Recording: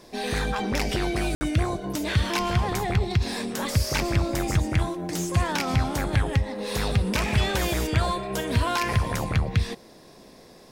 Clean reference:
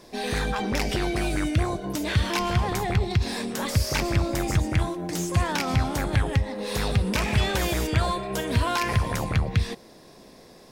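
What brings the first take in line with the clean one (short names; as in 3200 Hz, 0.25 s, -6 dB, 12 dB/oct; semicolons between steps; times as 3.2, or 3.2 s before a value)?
room tone fill 1.35–1.41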